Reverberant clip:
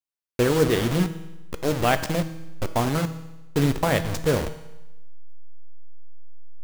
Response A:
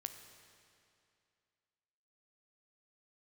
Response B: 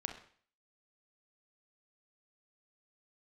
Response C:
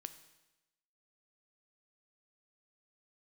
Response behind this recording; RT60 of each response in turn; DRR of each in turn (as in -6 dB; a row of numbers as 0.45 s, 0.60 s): C; 2.5 s, 0.50 s, 1.0 s; 7.0 dB, 4.5 dB, 10.0 dB